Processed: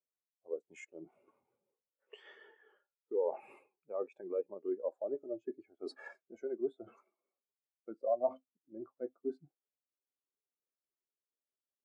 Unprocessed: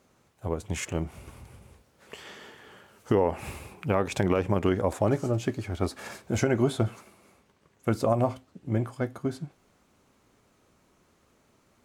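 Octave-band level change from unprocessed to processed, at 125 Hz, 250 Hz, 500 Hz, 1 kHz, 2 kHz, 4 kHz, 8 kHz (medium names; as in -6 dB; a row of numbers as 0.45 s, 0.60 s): under -40 dB, -17.5 dB, -8.5 dB, -14.5 dB, -18.5 dB, under -20 dB, under -25 dB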